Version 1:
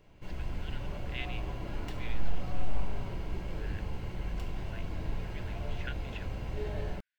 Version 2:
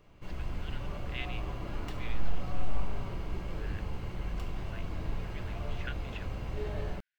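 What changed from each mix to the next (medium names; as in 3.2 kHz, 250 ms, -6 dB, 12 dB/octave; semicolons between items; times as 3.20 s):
master: remove band-stop 1.2 kHz, Q 6.7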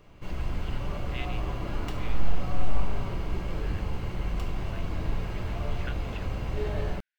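background +5.5 dB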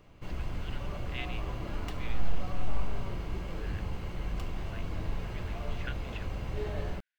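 background: send -6.5 dB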